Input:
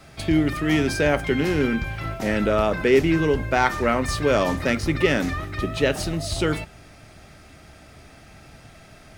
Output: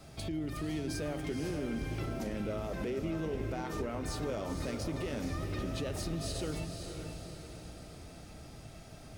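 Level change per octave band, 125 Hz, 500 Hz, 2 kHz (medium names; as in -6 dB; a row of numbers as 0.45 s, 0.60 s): -11.0 dB, -16.0 dB, -20.5 dB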